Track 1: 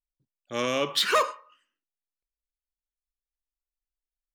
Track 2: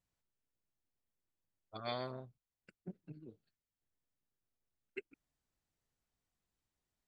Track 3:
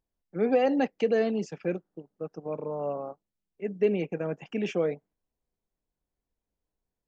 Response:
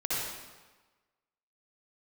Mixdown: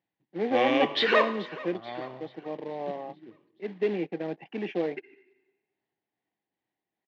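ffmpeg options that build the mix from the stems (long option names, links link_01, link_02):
-filter_complex "[0:a]volume=-1dB,asplit=3[link_01][link_02][link_03];[link_02]volume=-22dB[link_04];[link_03]volume=-18dB[link_05];[1:a]tremolo=f=2.4:d=0.39,volume=1dB,asplit=2[link_06][link_07];[link_07]volume=-19.5dB[link_08];[2:a]volume=-5dB[link_09];[3:a]atrim=start_sample=2205[link_10];[link_04][link_08]amix=inputs=2:normalize=0[link_11];[link_11][link_10]afir=irnorm=-1:irlink=0[link_12];[link_05]aecho=0:1:433|866|1299|1732|2165|2598|3031:1|0.47|0.221|0.104|0.0488|0.0229|0.0108[link_13];[link_01][link_06][link_09][link_12][link_13]amix=inputs=5:normalize=0,acrusher=bits=3:mode=log:mix=0:aa=0.000001,highpass=frequency=120:width=0.5412,highpass=frequency=120:width=1.3066,equalizer=frequency=140:width_type=q:width=4:gain=-4,equalizer=frequency=330:width_type=q:width=4:gain=8,equalizer=frequency=800:width_type=q:width=4:gain=9,equalizer=frequency=1300:width_type=q:width=4:gain=-7,equalizer=frequency=1900:width_type=q:width=4:gain=8,lowpass=frequency=3700:width=0.5412,lowpass=frequency=3700:width=1.3066"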